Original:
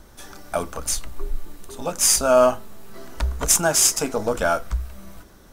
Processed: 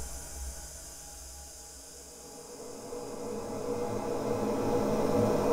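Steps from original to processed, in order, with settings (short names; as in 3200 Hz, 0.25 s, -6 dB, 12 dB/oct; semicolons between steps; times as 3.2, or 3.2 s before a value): on a send: darkening echo 0.108 s, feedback 62%, low-pass 1800 Hz, level -4 dB; on the sum: flipped gate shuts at -11 dBFS, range -33 dB; non-linear reverb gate 0.33 s falling, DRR 1 dB; Paulstretch 16×, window 0.50 s, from 3.83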